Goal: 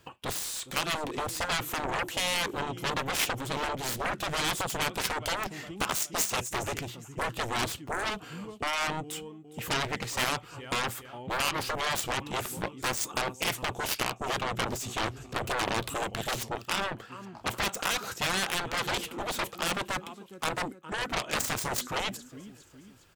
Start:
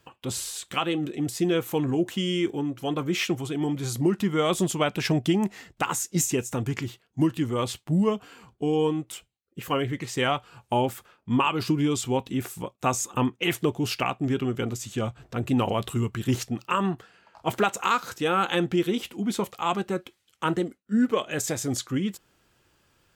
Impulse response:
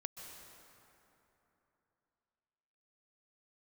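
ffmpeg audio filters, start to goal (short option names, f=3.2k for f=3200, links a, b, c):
-af "aecho=1:1:410|820|1230:0.0708|0.0333|0.0156,alimiter=limit=-16.5dB:level=0:latency=1:release=201,aeval=exprs='0.15*(cos(1*acos(clip(val(0)/0.15,-1,1)))-cos(1*PI/2))+0.0531*(cos(7*acos(clip(val(0)/0.15,-1,1)))-cos(7*PI/2))':c=same,afftfilt=real='re*lt(hypot(re,im),0.2)':imag='im*lt(hypot(re,im),0.2)':win_size=1024:overlap=0.75"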